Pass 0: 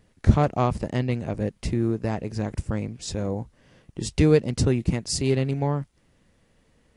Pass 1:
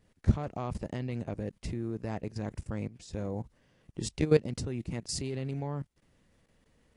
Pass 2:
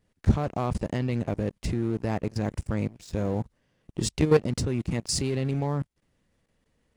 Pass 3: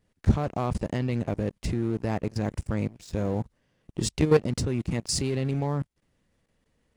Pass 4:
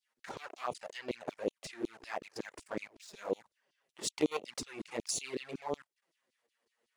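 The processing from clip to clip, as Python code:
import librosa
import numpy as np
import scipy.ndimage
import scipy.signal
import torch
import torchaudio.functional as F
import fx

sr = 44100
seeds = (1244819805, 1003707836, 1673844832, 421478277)

y1 = fx.level_steps(x, sr, step_db=16)
y1 = y1 * librosa.db_to_amplitude(-2.5)
y2 = fx.leveller(y1, sr, passes=2)
y3 = y2
y4 = fx.filter_lfo_highpass(y3, sr, shape='saw_down', hz=5.4, low_hz=310.0, high_hz=4800.0, q=1.9)
y4 = fx.env_flanger(y4, sr, rest_ms=8.8, full_db=-26.5)
y4 = y4 * librosa.db_to_amplitude(-3.0)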